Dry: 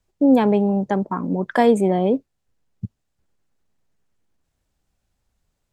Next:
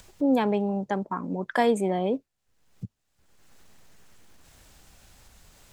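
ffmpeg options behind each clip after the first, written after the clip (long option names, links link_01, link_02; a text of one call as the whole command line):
ffmpeg -i in.wav -af "tiltshelf=frequency=740:gain=-3.5,acompressor=mode=upward:threshold=-27dB:ratio=2.5,volume=-5.5dB" out.wav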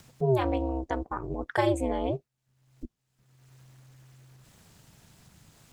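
ffmpeg -i in.wav -af "aeval=exprs='val(0)*sin(2*PI*130*n/s)':channel_layout=same" out.wav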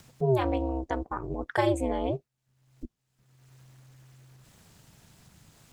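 ffmpeg -i in.wav -af anull out.wav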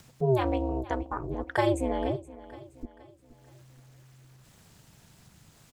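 ffmpeg -i in.wav -af "aecho=1:1:472|944|1416|1888:0.133|0.0587|0.0258|0.0114" out.wav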